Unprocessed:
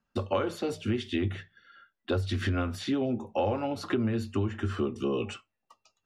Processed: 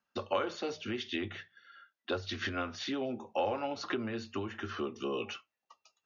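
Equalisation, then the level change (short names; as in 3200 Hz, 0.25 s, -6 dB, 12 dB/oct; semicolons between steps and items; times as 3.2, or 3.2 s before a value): HPF 130 Hz 6 dB/oct; brick-wall FIR low-pass 6900 Hz; low shelf 360 Hz -11.5 dB; 0.0 dB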